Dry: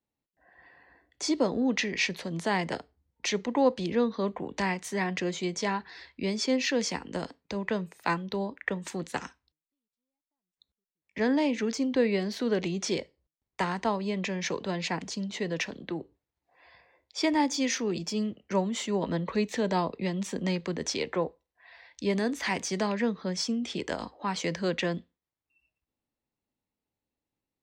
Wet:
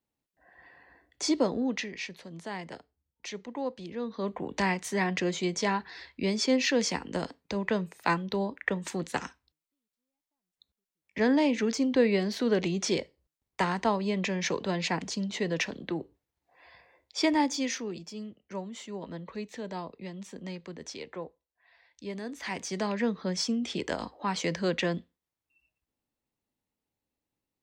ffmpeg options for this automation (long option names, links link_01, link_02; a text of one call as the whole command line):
ffmpeg -i in.wav -af "volume=23dB,afade=type=out:start_time=1.32:duration=0.67:silence=0.281838,afade=type=in:start_time=3.99:duration=0.54:silence=0.266073,afade=type=out:start_time=17.19:duration=0.86:silence=0.266073,afade=type=in:start_time=22.23:duration=0.97:silence=0.298538" out.wav